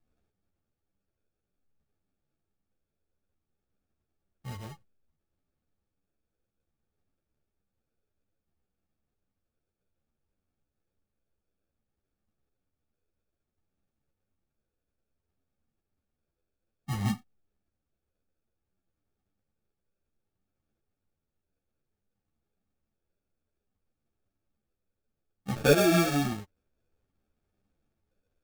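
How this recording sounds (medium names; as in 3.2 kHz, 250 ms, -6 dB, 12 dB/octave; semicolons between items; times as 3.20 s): phasing stages 12, 0.59 Hz, lowest notch 230–1100 Hz; aliases and images of a low sample rate 1 kHz, jitter 0%; a shimmering, thickened sound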